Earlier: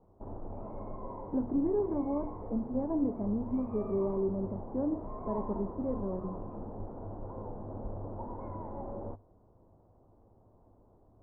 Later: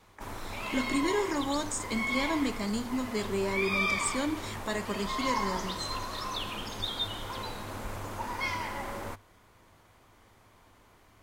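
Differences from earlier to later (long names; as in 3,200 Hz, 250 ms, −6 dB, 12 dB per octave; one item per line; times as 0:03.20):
speech: entry −0.60 s
master: remove inverse Chebyshev low-pass filter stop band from 3,300 Hz, stop band 70 dB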